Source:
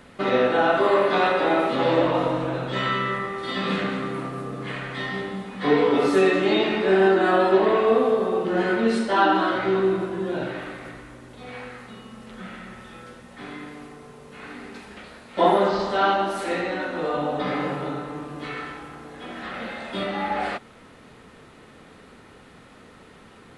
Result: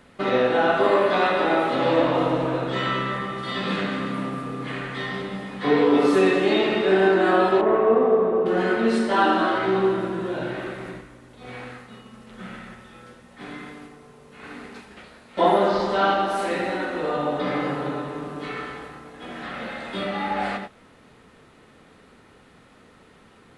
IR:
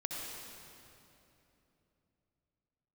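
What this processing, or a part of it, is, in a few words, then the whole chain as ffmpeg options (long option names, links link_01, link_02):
keyed gated reverb: -filter_complex "[0:a]asplit=3[link_01][link_02][link_03];[1:a]atrim=start_sample=2205[link_04];[link_02][link_04]afir=irnorm=-1:irlink=0[link_05];[link_03]apad=whole_len=1039815[link_06];[link_05][link_06]sidechaingate=range=-33dB:threshold=-39dB:ratio=16:detection=peak,volume=-3.5dB[link_07];[link_01][link_07]amix=inputs=2:normalize=0,asettb=1/sr,asplit=3[link_08][link_09][link_10];[link_08]atrim=end=7.614[link_11];[link_09]atrim=start=7.61:end=8.46,asetpts=PTS-STARTPTS,afade=type=in:duration=0.004:curve=qsin,afade=type=out:start_time=0.846:duration=0.004:curve=qsin,lowpass=1500[link_12];[link_10]atrim=start=8.456[link_13];[link_11][link_12]acrossfade=duration=0.004:curve1=hsin:curve2=qsin[link_14];[link_14][link_13]acrossfade=duration=0.004:curve1=qsin:curve2=hsin,volume=-4dB"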